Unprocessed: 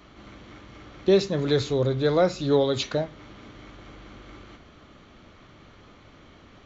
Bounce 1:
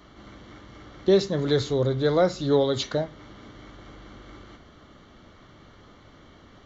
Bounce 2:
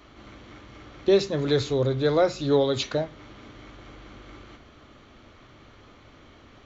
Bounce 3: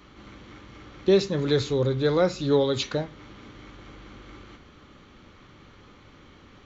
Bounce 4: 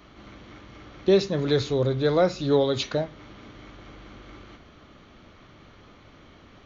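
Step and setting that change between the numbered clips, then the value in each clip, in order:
notch, frequency: 2500, 180, 660, 7500 Hz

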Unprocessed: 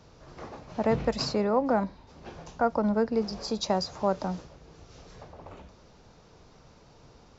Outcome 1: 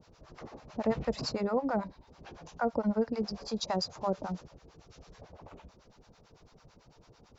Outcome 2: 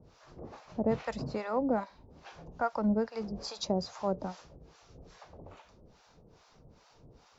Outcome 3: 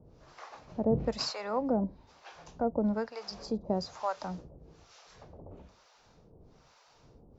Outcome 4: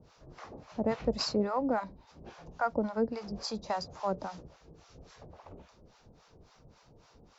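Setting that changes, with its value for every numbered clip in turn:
harmonic tremolo, rate: 9, 2.4, 1.1, 3.6 Hz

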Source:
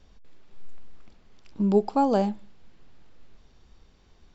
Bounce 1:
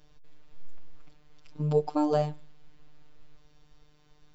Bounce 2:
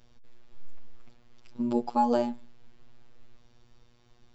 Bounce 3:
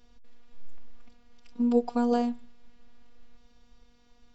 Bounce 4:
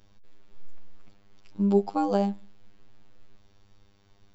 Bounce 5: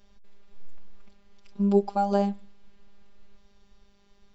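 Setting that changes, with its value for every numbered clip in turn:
robotiser, frequency: 150, 120, 240, 100, 200 Hz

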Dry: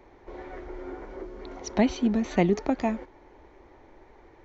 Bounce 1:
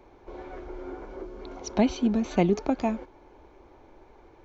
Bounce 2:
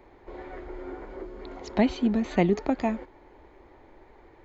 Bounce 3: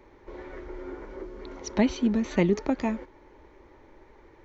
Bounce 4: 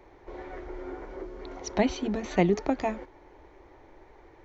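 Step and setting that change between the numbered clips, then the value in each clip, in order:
notch, frequency: 1900, 5800, 720, 230 Hz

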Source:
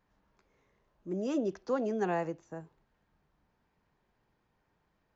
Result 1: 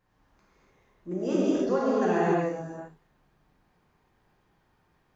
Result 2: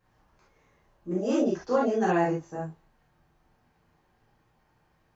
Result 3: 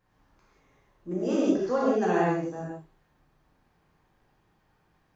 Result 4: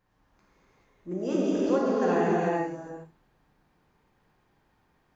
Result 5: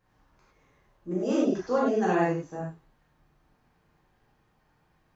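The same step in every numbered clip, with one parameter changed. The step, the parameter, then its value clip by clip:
non-linear reverb, gate: 320, 90, 210, 470, 130 ms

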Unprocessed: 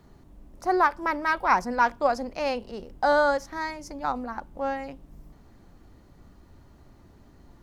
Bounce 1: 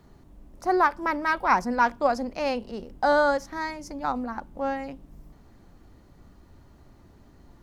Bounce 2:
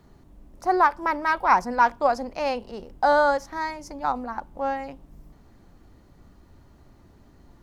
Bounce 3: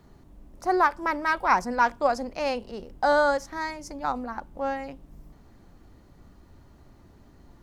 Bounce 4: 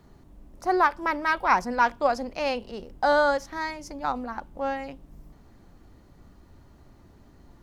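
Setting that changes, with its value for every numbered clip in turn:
dynamic EQ, frequency: 230, 880, 8000, 3100 Hz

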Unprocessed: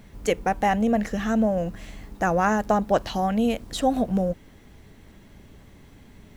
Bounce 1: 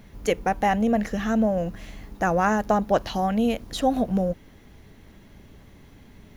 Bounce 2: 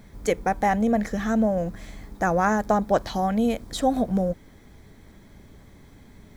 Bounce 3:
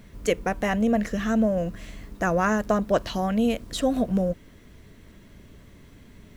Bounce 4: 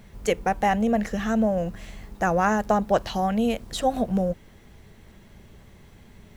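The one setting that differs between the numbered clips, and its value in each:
notch, frequency: 8000, 2800, 810, 280 Hz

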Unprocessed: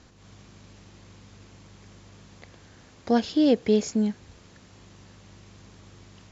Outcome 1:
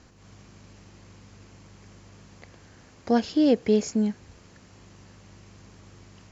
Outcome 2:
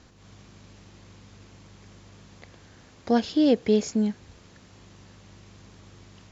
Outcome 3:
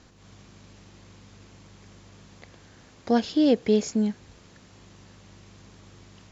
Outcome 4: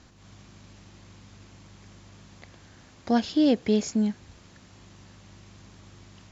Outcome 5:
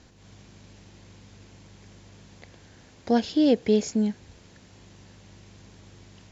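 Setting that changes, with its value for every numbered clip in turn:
bell, frequency: 3600, 9300, 78, 460, 1200 Hz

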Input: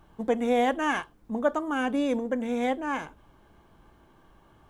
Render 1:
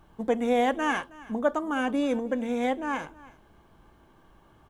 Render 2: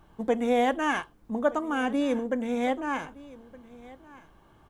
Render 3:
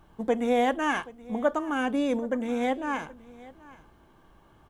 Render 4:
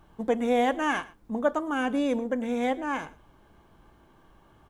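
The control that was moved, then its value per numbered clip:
echo, time: 0.319, 1.218, 0.776, 0.112 s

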